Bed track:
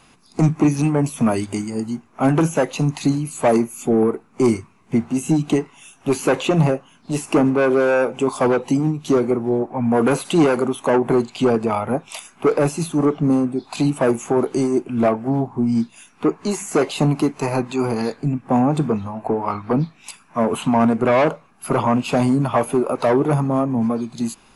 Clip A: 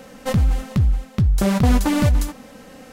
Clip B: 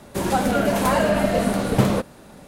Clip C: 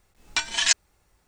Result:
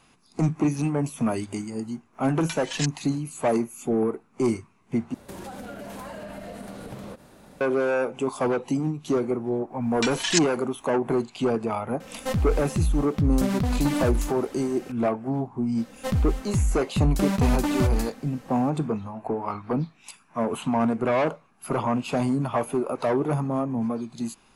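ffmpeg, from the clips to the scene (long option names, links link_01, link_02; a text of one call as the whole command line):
ffmpeg -i bed.wav -i cue0.wav -i cue1.wav -i cue2.wav -filter_complex "[3:a]asplit=2[link_01][link_02];[1:a]asplit=2[link_03][link_04];[0:a]volume=-7dB[link_05];[2:a]acompressor=threshold=-30dB:ratio=6:attack=3.2:release=140:knee=1:detection=peak[link_06];[link_03]alimiter=limit=-16.5dB:level=0:latency=1:release=71[link_07];[link_05]asplit=2[link_08][link_09];[link_08]atrim=end=5.144[link_10];[link_06]atrim=end=2.47,asetpts=PTS-STARTPTS,volume=-5.5dB[link_11];[link_09]atrim=start=7.606[link_12];[link_01]atrim=end=1.27,asetpts=PTS-STARTPTS,volume=-10.5dB,afade=type=in:duration=0.004:curve=hsin,afade=type=out:start_time=1.266:duration=0.004:curve=hsin,adelay=2130[link_13];[link_02]atrim=end=1.27,asetpts=PTS-STARTPTS,volume=-3.5dB,afade=type=in:duration=0.1,afade=type=out:start_time=1.17:duration=0.1,adelay=9660[link_14];[link_07]atrim=end=2.92,asetpts=PTS-STARTPTS,volume=-1.5dB,afade=type=in:duration=0.004:curve=hsin,afade=type=out:start_time=2.916:duration=0.004:curve=hsin,adelay=12000[link_15];[link_04]atrim=end=2.92,asetpts=PTS-STARTPTS,volume=-6dB,afade=type=in:duration=0.004:curve=hsin,afade=type=out:start_time=2.916:duration=0.004:curve=hsin,adelay=15780[link_16];[link_10][link_11]acrossfade=duration=0.004:curve1=hsin:curve2=hsin[link_17];[link_17][link_12]acrossfade=duration=0.004:curve1=hsin:curve2=hsin[link_18];[link_18][link_13][link_14][link_15][link_16]amix=inputs=5:normalize=0" out.wav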